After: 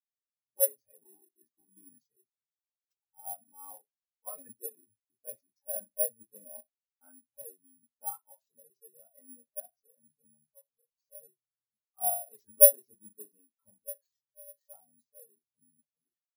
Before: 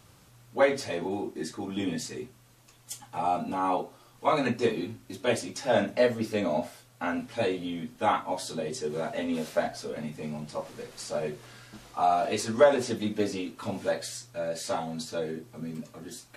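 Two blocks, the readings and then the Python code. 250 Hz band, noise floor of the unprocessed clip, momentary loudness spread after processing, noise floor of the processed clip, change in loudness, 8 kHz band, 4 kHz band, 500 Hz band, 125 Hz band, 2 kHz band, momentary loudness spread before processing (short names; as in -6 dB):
-33.5 dB, -58 dBFS, 27 LU, under -85 dBFS, +3.5 dB, +7.5 dB, under -40 dB, -9.5 dB, under -35 dB, under -35 dB, 14 LU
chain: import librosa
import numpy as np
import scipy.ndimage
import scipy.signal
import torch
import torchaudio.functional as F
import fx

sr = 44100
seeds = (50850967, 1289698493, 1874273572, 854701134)

y = fx.peak_eq(x, sr, hz=290.0, db=-4.5, octaves=1.3)
y = (np.kron(y[::4], np.eye(4)[0]) * 4)[:len(y)]
y = fx.spectral_expand(y, sr, expansion=2.5)
y = y * librosa.db_to_amplitude(-3.5)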